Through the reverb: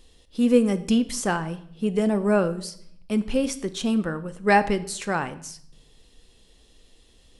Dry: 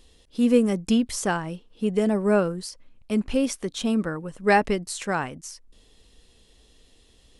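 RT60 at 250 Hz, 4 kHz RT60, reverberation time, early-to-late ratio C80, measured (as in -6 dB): 0.90 s, 0.60 s, 0.65 s, 18.5 dB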